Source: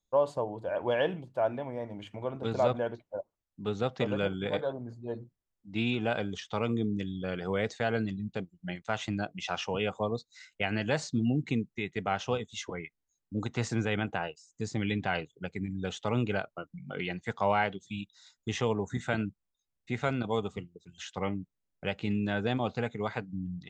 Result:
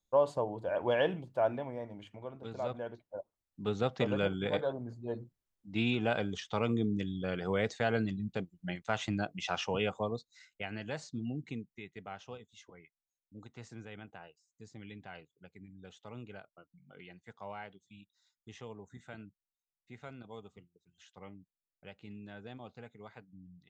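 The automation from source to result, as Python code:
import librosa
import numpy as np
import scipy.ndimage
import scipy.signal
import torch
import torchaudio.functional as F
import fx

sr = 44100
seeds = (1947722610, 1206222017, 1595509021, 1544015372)

y = fx.gain(x, sr, db=fx.line((1.51, -1.0), (2.5, -11.5), (3.62, -1.0), (9.8, -1.0), (10.73, -10.0), (11.42, -10.0), (12.62, -17.5)))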